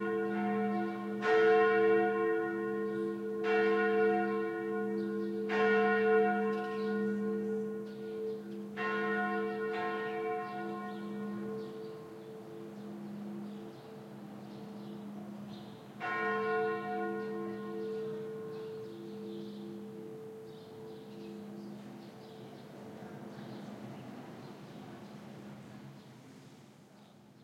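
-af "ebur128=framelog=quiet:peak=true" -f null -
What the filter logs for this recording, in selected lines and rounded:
Integrated loudness:
  I:         -33.9 LUFS
  Threshold: -45.8 LUFS
Loudness range:
  LRA:        17.4 LU
  Threshold: -56.2 LUFS
  LRA low:   -48.1 LUFS
  LRA high:  -30.7 LUFS
True peak:
  Peak:      -16.8 dBFS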